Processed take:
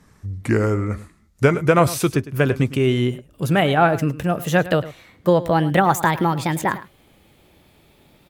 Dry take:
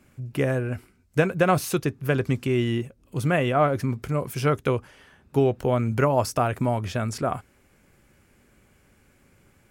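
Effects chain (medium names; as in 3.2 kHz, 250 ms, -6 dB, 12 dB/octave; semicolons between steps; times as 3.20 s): gliding tape speed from 75% -> 159%; delay 106 ms -16.5 dB; trim +5 dB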